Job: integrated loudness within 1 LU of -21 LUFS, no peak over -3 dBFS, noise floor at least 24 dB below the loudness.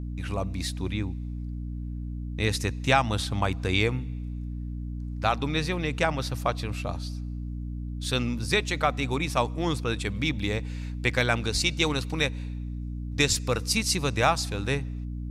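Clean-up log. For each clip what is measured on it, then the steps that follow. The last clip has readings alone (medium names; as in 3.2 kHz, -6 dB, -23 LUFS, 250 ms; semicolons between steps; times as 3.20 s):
hum 60 Hz; highest harmonic 300 Hz; hum level -31 dBFS; loudness -28.0 LUFS; peak level -7.5 dBFS; loudness target -21.0 LUFS
-> hum notches 60/120/180/240/300 Hz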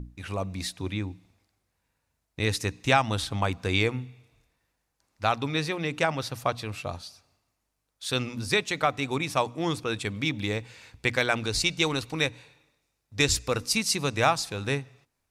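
hum not found; loudness -27.5 LUFS; peak level -7.0 dBFS; loudness target -21.0 LUFS
-> trim +6.5 dB; peak limiter -3 dBFS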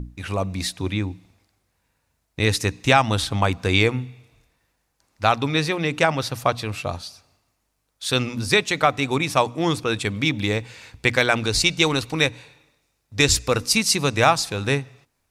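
loudness -21.5 LUFS; peak level -3.0 dBFS; noise floor -73 dBFS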